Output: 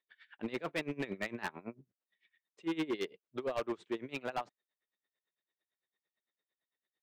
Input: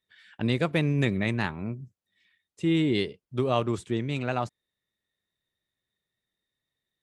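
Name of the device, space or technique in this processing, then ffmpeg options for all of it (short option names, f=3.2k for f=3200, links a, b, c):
helicopter radio: -af "highpass=360,lowpass=3k,aeval=exprs='val(0)*pow(10,-22*(0.5-0.5*cos(2*PI*8.9*n/s))/20)':c=same,asoftclip=type=hard:threshold=-30.5dB,volume=1dB"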